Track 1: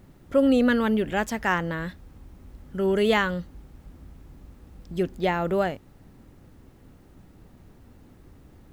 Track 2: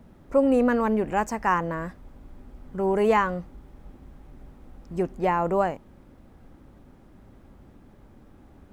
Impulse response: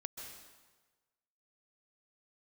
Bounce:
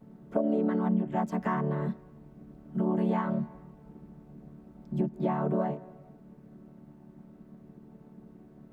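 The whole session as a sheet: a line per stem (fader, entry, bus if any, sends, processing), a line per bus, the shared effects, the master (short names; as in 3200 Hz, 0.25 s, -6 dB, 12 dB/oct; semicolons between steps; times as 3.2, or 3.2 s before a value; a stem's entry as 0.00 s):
-15.0 dB, 0.00 s, no send, compressor 2:1, threshold -26 dBFS, peak gain reduction 6.5 dB
+1.0 dB, 0.00 s, send -14.5 dB, chord vocoder major triad, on D3; high shelf 2500 Hz -8.5 dB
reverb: on, RT60 1.3 s, pre-delay 0.122 s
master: compressor 3:1, threshold -26 dBFS, peak gain reduction 9 dB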